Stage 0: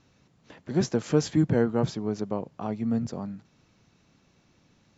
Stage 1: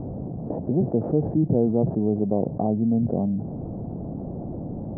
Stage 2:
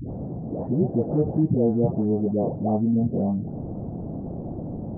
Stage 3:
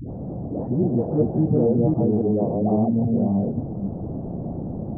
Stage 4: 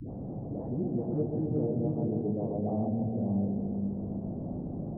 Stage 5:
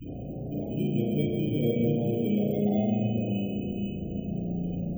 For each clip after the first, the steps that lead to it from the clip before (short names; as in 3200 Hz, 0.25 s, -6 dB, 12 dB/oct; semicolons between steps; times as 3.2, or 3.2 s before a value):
Chebyshev low-pass 720 Hz, order 4; fast leveller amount 70%
dispersion highs, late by 0.132 s, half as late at 690 Hz
reverse delay 0.277 s, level -1.5 dB
resonator 50 Hz, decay 0.25 s, harmonics all, mix 60%; dark delay 0.131 s, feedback 71%, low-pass 710 Hz, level -6 dB; three-band squash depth 40%; gain -8.5 dB
FFT order left unsorted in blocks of 16 samples; loudest bins only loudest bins 32; reverb RT60 1.0 s, pre-delay 34 ms, DRR -2 dB